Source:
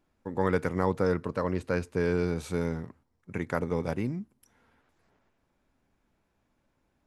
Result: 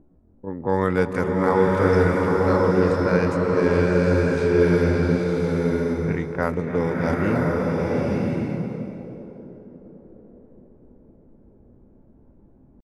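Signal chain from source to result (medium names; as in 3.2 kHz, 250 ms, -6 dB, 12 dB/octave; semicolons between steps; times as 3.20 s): tempo 0.55×; upward compressor, threshold -47 dBFS; tape echo 288 ms, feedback 84%, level -11.5 dB, low-pass 1.7 kHz; level-controlled noise filter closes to 360 Hz, open at -24 dBFS; swelling reverb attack 1040 ms, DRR -2.5 dB; trim +5 dB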